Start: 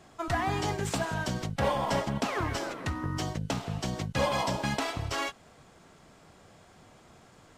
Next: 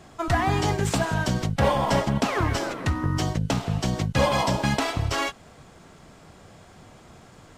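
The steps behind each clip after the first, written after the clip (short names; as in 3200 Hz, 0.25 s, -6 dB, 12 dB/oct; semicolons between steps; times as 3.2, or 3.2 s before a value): low shelf 190 Hz +4.5 dB; gain +5.5 dB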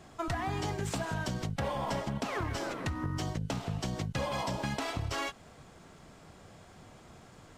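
in parallel at -8.5 dB: soft clip -22 dBFS, distortion -11 dB; on the sum: compressor, threshold -23 dBFS, peak gain reduction 8 dB; gain -7.5 dB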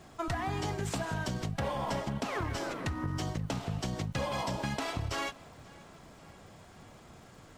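crackle 320/s -56 dBFS; tape echo 0.534 s, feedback 67%, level -22 dB, low-pass 5100 Hz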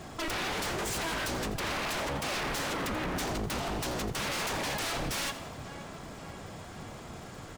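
wavefolder -37.5 dBFS; frequency-shifting echo 85 ms, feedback 50%, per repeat +70 Hz, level -14 dB; gain +9 dB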